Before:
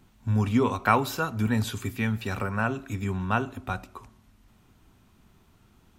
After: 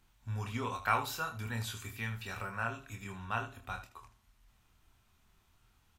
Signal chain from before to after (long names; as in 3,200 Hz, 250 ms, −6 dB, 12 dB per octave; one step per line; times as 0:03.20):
parametric band 250 Hz −12.5 dB 2.6 octaves
on a send: ambience of single reflections 26 ms −5 dB, 78 ms −11.5 dB
on the sum: level −6.5 dB